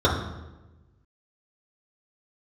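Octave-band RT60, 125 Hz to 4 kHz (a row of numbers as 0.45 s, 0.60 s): 1.6 s, 1.4 s, 1.2 s, 1.0 s, 0.90 s, 0.75 s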